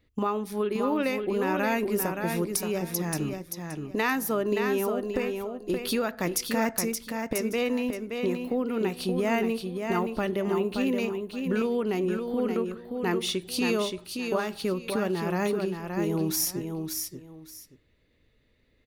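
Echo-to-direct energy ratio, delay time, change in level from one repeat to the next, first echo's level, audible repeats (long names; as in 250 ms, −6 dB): −5.5 dB, 574 ms, −13.0 dB, −5.5 dB, 2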